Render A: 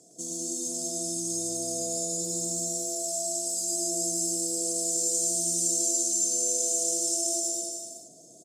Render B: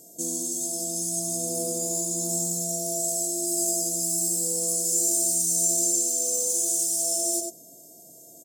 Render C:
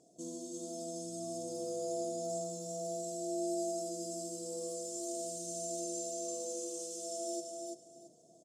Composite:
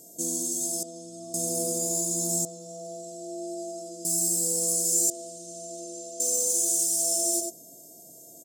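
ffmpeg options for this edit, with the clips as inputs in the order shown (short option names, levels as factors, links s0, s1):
-filter_complex "[2:a]asplit=3[s0][s1][s2];[1:a]asplit=4[s3][s4][s5][s6];[s3]atrim=end=0.832[s7];[s0]atrim=start=0.828:end=1.342[s8];[s4]atrim=start=1.338:end=2.452[s9];[s1]atrim=start=2.448:end=4.052[s10];[s5]atrim=start=4.048:end=5.102[s11];[s2]atrim=start=5.098:end=6.202[s12];[s6]atrim=start=6.198[s13];[s7][s8]acrossfade=d=0.004:c1=hsin:c2=hsin[s14];[s14][s9]acrossfade=d=0.004:c1=hsin:c2=hsin[s15];[s15][s10]acrossfade=d=0.004:c1=hsin:c2=hsin[s16];[s16][s11]acrossfade=d=0.004:c1=hsin:c2=hsin[s17];[s17][s12]acrossfade=d=0.004:c1=hsin:c2=hsin[s18];[s18][s13]acrossfade=d=0.004:c1=hsin:c2=hsin"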